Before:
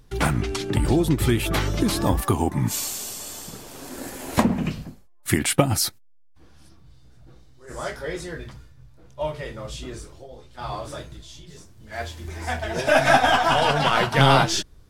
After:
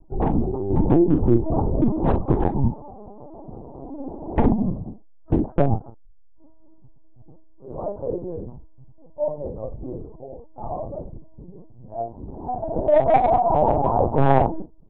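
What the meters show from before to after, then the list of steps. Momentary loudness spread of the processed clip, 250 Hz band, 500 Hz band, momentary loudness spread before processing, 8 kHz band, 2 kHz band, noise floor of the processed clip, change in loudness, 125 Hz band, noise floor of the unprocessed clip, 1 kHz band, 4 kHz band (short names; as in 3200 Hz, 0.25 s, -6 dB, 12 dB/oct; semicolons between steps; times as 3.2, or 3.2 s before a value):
21 LU, +2.5 dB, +3.0 dB, 19 LU, under -40 dB, -16.5 dB, -45 dBFS, 0.0 dB, +0.5 dB, -50 dBFS, +0.5 dB, under -25 dB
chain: steep low-pass 910 Hz 48 dB/oct; low shelf 64 Hz -2.5 dB; overloaded stage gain 12.5 dB; early reflections 17 ms -10 dB, 43 ms -9 dB; LPC vocoder at 8 kHz pitch kept; gain +3 dB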